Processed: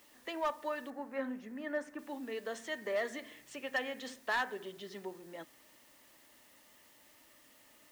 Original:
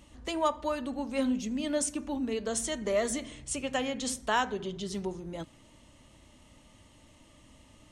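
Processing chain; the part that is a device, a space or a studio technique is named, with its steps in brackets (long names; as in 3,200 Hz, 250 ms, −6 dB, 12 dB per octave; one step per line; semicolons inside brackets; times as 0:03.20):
drive-through speaker (band-pass filter 350–3,500 Hz; parametric band 1,800 Hz +11 dB 0.25 octaves; hard clipping −21.5 dBFS, distortion −15 dB; white noise bed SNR 23 dB)
0:00.90–0:01.99: high shelf with overshoot 2,300 Hz −9 dB, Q 1.5
level −5.5 dB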